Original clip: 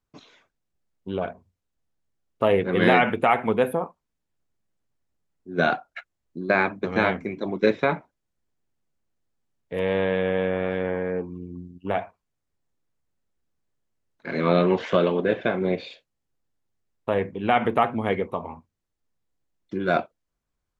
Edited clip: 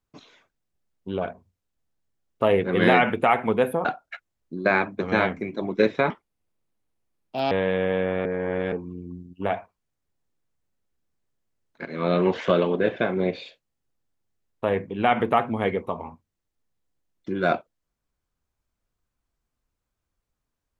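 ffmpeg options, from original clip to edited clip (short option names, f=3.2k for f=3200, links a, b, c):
-filter_complex "[0:a]asplit=7[a][b][c][d][e][f][g];[a]atrim=end=3.852[h];[b]atrim=start=5.688:end=7.944[i];[c]atrim=start=7.94:end=9.96,asetpts=PTS-STARTPTS,asetrate=63063,aresample=44100,atrim=end_sample=62295,asetpts=PTS-STARTPTS[j];[d]atrim=start=9.956:end=10.702[k];[e]atrim=start=10.698:end=11.172,asetpts=PTS-STARTPTS,areverse[l];[f]atrim=start=11.168:end=14.3,asetpts=PTS-STARTPTS,afade=t=out:st=3.128:d=0.004:c=hsin:silence=0.223872[m];[g]atrim=start=14.3,asetpts=PTS-STARTPTS,afade=t=in:d=0.41:silence=0.223872[n];[h][i]acrossfade=d=0.004:c1=hsin:c2=hsin[o];[o][j]acrossfade=d=0.004:c1=hsin:c2=hsin[p];[p][k]acrossfade=d=0.004:c1=hsin:c2=hsin[q];[q][l]acrossfade=d=0.004:c1=hsin:c2=hsin[r];[m][n]concat=n=2:v=0:a=1[s];[r][s]acrossfade=d=0.004:c1=hsin:c2=hsin"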